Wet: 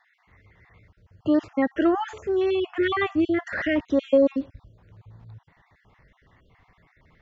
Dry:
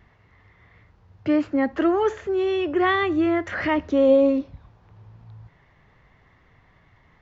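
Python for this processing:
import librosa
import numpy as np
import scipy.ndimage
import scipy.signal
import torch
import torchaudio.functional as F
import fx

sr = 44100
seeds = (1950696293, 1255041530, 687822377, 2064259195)

y = fx.spec_dropout(x, sr, seeds[0], share_pct=37)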